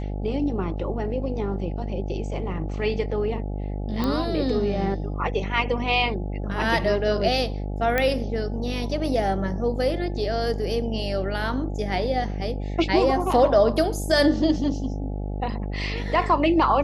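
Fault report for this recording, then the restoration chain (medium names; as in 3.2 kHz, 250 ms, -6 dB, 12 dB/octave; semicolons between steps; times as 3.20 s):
buzz 50 Hz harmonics 17 -29 dBFS
4.04 s: pop -13 dBFS
7.98 s: pop -9 dBFS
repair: de-click; de-hum 50 Hz, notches 17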